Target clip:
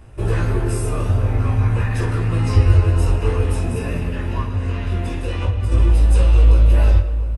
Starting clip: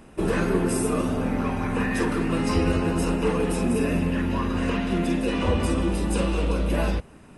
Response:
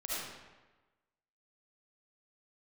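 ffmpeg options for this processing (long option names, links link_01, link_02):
-filter_complex "[0:a]lowshelf=frequency=140:width_type=q:width=3:gain=10.5,asettb=1/sr,asplit=3[link_01][link_02][link_03];[link_01]atrim=end=4.414[link_04];[link_02]atrim=start=4.41:end=5.72,asetpts=PTS-STARTPTS,afade=type=in:duration=0.004:curve=qsin,afade=type=out:start_time=1.306:duration=0.004:curve=qsin,acompressor=threshold=-17dB:ratio=6[link_05];[link_03]atrim=start=5.716[link_06];[link_04][link_05]acrossfade=duration=0.004:curve1=hsin:curve2=qsin[link_07];[link_07][link_06]acrossfade=duration=0.004:curve1=qsin:curve2=hsin,flanger=delay=16.5:depth=5:speed=0.49,asplit=2[link_08][link_09];[link_09]adelay=699.7,volume=-13dB,highshelf=frequency=4000:gain=-15.7[link_10];[link_08][link_10]amix=inputs=2:normalize=0,asplit=2[link_11][link_12];[1:a]atrim=start_sample=2205,lowpass=8900[link_13];[link_12][link_13]afir=irnorm=-1:irlink=0,volume=-13.5dB[link_14];[link_11][link_14]amix=inputs=2:normalize=0,volume=1.5dB"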